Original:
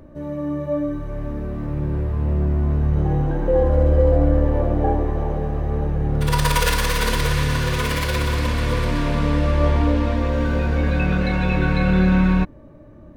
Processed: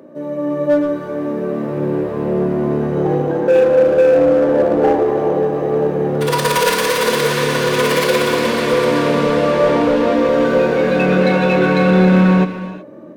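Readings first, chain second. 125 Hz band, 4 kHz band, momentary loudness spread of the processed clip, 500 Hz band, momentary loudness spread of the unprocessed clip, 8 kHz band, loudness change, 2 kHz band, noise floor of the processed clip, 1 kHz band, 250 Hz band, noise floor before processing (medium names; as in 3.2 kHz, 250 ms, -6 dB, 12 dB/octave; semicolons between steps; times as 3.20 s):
-2.5 dB, +5.5 dB, 9 LU, +11.5 dB, 9 LU, +5.0 dB, +5.5 dB, +6.0 dB, -27 dBFS, +7.0 dB, +6.0 dB, -43 dBFS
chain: high-pass 180 Hz 24 dB/octave; peaking EQ 460 Hz +7.5 dB 0.9 oct; in parallel at -8 dB: wavefolder -17 dBFS; on the sum: gated-style reverb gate 400 ms flat, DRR 9 dB; level rider gain up to 4.5 dB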